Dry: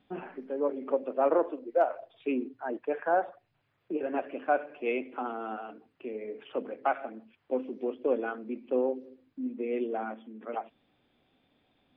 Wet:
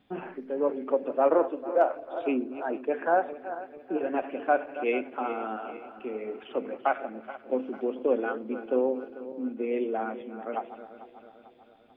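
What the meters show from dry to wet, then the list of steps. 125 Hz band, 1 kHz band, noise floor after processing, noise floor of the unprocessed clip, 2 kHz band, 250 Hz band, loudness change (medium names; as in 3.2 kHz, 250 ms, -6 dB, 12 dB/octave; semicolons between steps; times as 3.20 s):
no reading, +3.0 dB, -55 dBFS, -75 dBFS, +3.0 dB, +3.0 dB, +2.5 dB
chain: backward echo that repeats 222 ms, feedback 69%, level -13 dB; trim +2.5 dB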